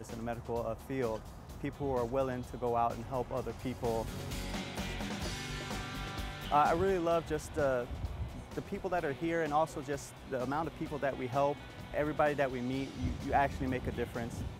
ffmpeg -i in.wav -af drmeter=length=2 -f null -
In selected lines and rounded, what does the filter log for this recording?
Channel 1: DR: 12.5
Overall DR: 12.5